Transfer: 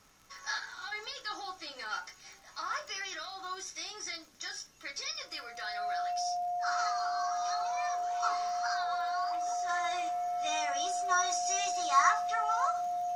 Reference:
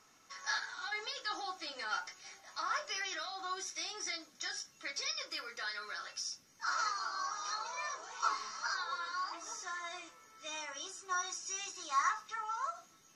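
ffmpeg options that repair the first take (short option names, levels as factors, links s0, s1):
-af "adeclick=t=4,bandreject=f=710:w=30,agate=range=0.0891:threshold=0.00631,asetnsamples=n=441:p=0,asendcmd='9.69 volume volume -6.5dB',volume=1"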